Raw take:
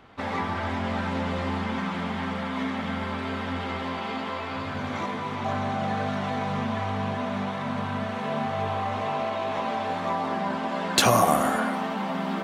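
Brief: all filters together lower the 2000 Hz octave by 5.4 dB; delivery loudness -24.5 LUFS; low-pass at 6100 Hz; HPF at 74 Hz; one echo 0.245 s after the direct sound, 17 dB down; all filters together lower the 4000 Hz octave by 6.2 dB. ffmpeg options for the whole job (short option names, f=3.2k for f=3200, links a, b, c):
-af "highpass=74,lowpass=6.1k,equalizer=f=2k:t=o:g=-6,equalizer=f=4k:t=o:g=-5,aecho=1:1:245:0.141,volume=4.5dB"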